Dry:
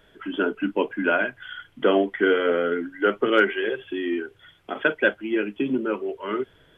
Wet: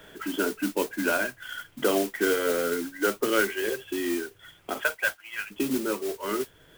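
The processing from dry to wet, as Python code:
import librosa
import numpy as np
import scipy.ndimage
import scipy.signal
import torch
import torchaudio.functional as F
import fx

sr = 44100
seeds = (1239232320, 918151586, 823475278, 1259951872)

y = fx.highpass(x, sr, hz=fx.line((4.8, 510.0), (5.5, 1300.0)), slope=24, at=(4.8, 5.5), fade=0.02)
y = fx.mod_noise(y, sr, seeds[0], snr_db=11)
y = fx.band_squash(y, sr, depth_pct=40)
y = y * librosa.db_to_amplitude(-4.0)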